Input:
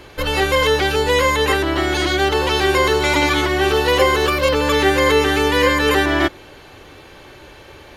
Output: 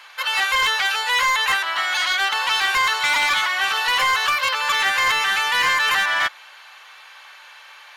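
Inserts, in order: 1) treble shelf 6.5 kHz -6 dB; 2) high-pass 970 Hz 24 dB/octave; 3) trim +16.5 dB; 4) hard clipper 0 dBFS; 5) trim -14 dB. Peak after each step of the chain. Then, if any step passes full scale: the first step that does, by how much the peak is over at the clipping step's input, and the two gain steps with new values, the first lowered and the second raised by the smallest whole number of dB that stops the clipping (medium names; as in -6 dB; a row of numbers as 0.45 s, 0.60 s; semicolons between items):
-3.0 dBFS, -8.5 dBFS, +8.0 dBFS, 0.0 dBFS, -14.0 dBFS; step 3, 8.0 dB; step 3 +8.5 dB, step 5 -6 dB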